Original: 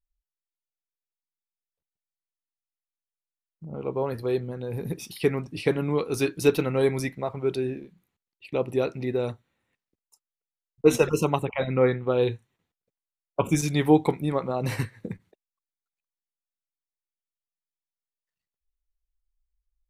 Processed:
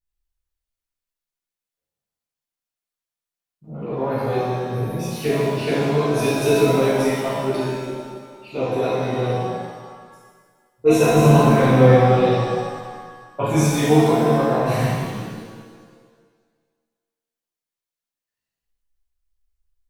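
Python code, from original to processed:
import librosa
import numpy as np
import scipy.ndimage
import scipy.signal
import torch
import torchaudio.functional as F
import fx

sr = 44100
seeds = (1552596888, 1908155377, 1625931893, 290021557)

y = fx.low_shelf(x, sr, hz=360.0, db=9.5, at=(11.1, 12.08))
y = fx.rev_shimmer(y, sr, seeds[0], rt60_s=1.6, semitones=7, shimmer_db=-8, drr_db=-11.5)
y = y * librosa.db_to_amplitude(-6.5)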